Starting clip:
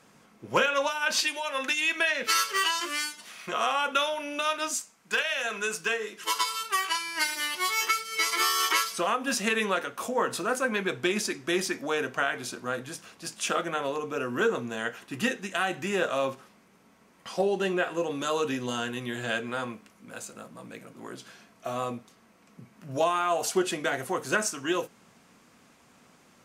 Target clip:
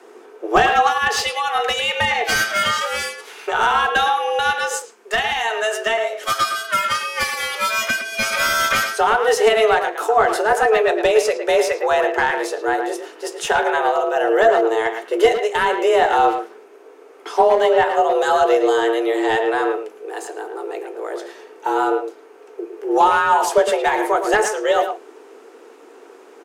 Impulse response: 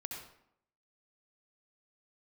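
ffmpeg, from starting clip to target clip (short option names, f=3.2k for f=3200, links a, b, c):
-filter_complex "[0:a]equalizer=f=370:t=o:w=0.6:g=-7,afreqshift=220,aeval=exprs='0.299*sin(PI/2*1.78*val(0)/0.299)':c=same,tiltshelf=f=880:g=10,asplit=2[a][b];[b]adelay=110,highpass=300,lowpass=3.4k,asoftclip=type=hard:threshold=-14.5dB,volume=-7dB[c];[a][c]amix=inputs=2:normalize=0,volume=4.5dB"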